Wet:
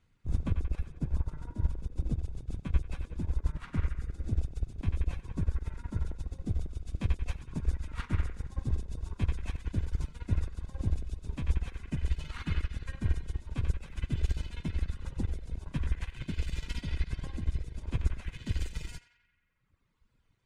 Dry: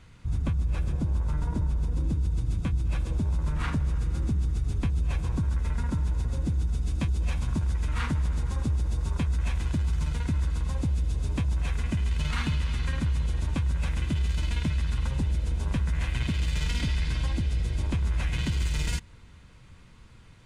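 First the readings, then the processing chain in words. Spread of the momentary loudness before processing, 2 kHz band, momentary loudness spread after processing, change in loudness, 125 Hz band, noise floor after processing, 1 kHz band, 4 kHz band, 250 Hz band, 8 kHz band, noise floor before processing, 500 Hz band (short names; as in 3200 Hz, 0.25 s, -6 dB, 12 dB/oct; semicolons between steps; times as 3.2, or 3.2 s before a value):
1 LU, -9.0 dB, 5 LU, -7.0 dB, -7.0 dB, -71 dBFS, -9.5 dB, -10.5 dB, -7.0 dB, -11.0 dB, -51 dBFS, -6.0 dB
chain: octaver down 2 oct, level +1 dB; reverb removal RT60 1.8 s; narrowing echo 90 ms, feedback 70%, band-pass 1800 Hz, level -5.5 dB; upward expander 2.5:1, over -33 dBFS; gain +2 dB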